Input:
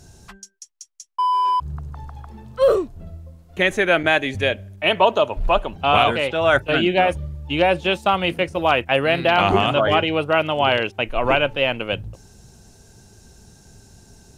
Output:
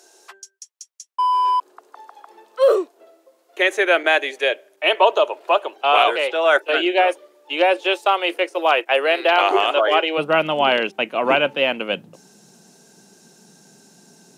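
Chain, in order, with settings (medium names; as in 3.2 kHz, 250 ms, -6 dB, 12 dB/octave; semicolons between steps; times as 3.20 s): steep high-pass 340 Hz 48 dB/octave, from 10.17 s 160 Hz; trim +1 dB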